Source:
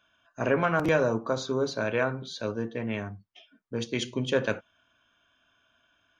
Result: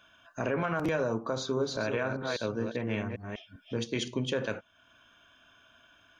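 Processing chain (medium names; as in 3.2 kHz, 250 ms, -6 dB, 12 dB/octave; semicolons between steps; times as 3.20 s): 1.37–4.08 s: chunks repeated in reverse 199 ms, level -6 dB; peak limiter -18 dBFS, peak gain reduction 5.5 dB; compression 1.5:1, threshold -52 dBFS, peak gain reduction 10.5 dB; trim +7.5 dB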